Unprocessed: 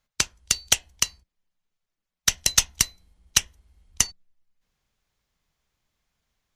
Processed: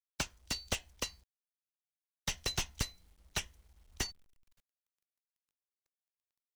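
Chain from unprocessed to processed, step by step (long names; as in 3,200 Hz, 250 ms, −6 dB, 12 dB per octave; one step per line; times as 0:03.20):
bit reduction 11 bits
slew-rate limiting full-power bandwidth 220 Hz
level −5 dB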